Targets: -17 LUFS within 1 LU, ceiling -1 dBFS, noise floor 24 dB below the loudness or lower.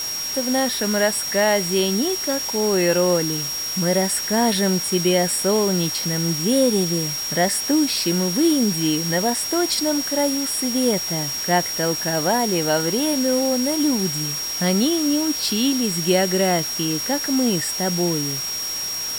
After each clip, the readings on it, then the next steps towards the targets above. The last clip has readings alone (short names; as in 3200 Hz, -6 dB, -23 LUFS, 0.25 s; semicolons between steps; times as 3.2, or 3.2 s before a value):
steady tone 5600 Hz; tone level -25 dBFS; noise floor -27 dBFS; noise floor target -44 dBFS; loudness -20.0 LUFS; peak -5.5 dBFS; loudness target -17.0 LUFS
-> notch 5600 Hz, Q 30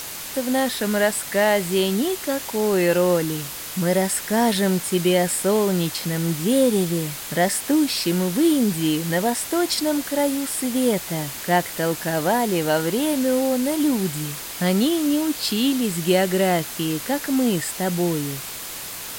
steady tone none; noise floor -33 dBFS; noise floor target -46 dBFS
-> noise print and reduce 13 dB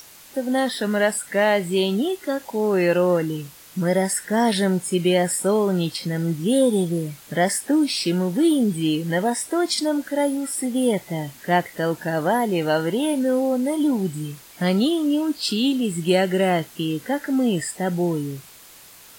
noise floor -46 dBFS; loudness -22.0 LUFS; peak -6.5 dBFS; loudness target -17.0 LUFS
-> gain +5 dB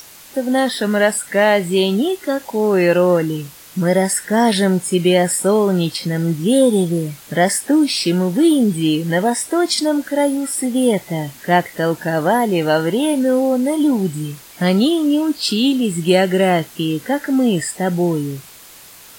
loudness -17.0 LUFS; peak -1.5 dBFS; noise floor -41 dBFS